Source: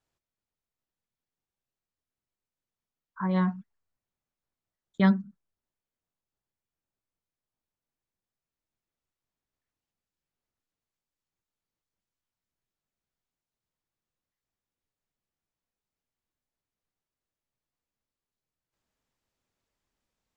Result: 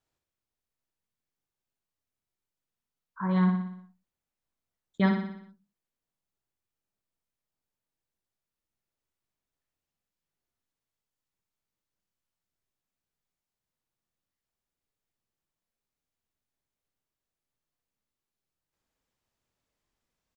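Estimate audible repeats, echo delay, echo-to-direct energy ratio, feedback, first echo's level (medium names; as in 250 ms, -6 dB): 6, 60 ms, -4.5 dB, 56%, -6.0 dB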